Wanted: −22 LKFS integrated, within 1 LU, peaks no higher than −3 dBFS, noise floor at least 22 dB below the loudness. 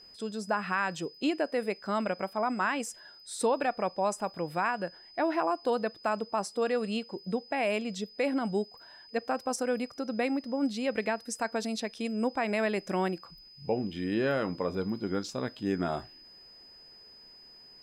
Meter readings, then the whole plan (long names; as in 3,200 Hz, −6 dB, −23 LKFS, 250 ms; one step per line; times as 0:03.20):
interfering tone 5,000 Hz; level of the tone −51 dBFS; integrated loudness −31.5 LKFS; sample peak −17.0 dBFS; target loudness −22.0 LKFS
→ notch filter 5,000 Hz, Q 30
level +9.5 dB